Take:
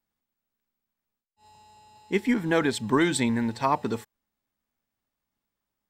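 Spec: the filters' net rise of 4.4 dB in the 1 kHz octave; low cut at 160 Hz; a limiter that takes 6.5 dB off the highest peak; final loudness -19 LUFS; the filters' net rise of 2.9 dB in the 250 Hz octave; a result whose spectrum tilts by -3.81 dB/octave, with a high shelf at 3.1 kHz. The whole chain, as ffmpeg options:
-af "highpass=160,equalizer=f=250:t=o:g=4,equalizer=f=1000:t=o:g=4,highshelf=f=3100:g=8,volume=1.88,alimiter=limit=0.447:level=0:latency=1"

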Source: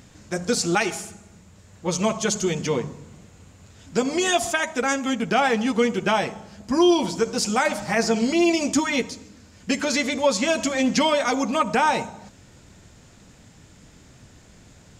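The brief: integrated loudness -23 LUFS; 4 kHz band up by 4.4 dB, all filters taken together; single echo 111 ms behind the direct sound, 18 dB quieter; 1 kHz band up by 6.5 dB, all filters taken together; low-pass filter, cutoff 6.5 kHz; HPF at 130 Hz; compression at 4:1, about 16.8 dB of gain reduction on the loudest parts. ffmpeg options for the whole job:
-af "highpass=130,lowpass=6500,equalizer=f=1000:t=o:g=8,equalizer=f=4000:t=o:g=6,acompressor=threshold=0.0282:ratio=4,aecho=1:1:111:0.126,volume=2.99"

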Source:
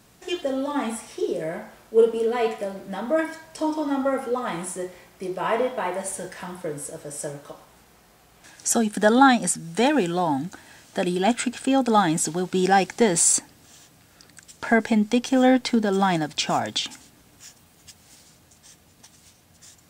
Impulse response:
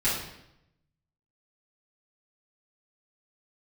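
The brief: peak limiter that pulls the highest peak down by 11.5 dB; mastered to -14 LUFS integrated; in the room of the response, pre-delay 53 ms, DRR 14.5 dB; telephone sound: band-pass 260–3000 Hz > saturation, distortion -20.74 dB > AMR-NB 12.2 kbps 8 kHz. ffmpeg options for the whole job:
-filter_complex "[0:a]alimiter=limit=0.141:level=0:latency=1,asplit=2[s0][s1];[1:a]atrim=start_sample=2205,adelay=53[s2];[s1][s2]afir=irnorm=-1:irlink=0,volume=0.0501[s3];[s0][s3]amix=inputs=2:normalize=0,highpass=260,lowpass=3000,asoftclip=threshold=0.119,volume=7.08" -ar 8000 -c:a libopencore_amrnb -b:a 12200

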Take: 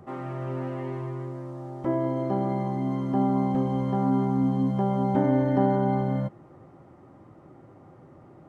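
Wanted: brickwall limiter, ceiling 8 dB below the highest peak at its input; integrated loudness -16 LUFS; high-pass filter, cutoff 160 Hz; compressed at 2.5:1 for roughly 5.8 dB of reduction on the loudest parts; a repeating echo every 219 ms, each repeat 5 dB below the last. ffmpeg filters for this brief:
-af "highpass=160,acompressor=threshold=0.0447:ratio=2.5,alimiter=limit=0.0668:level=0:latency=1,aecho=1:1:219|438|657|876|1095|1314|1533:0.562|0.315|0.176|0.0988|0.0553|0.031|0.0173,volume=5.62"

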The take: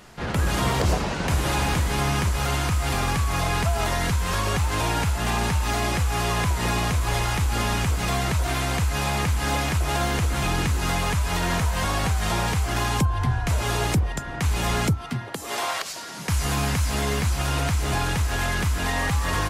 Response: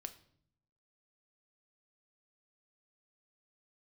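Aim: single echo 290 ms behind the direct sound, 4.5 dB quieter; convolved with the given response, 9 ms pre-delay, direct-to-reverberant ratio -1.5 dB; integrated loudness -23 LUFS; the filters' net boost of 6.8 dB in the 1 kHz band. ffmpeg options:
-filter_complex "[0:a]equalizer=f=1000:t=o:g=8.5,aecho=1:1:290:0.596,asplit=2[s0][s1];[1:a]atrim=start_sample=2205,adelay=9[s2];[s1][s2]afir=irnorm=-1:irlink=0,volume=1.88[s3];[s0][s3]amix=inputs=2:normalize=0,volume=0.531"

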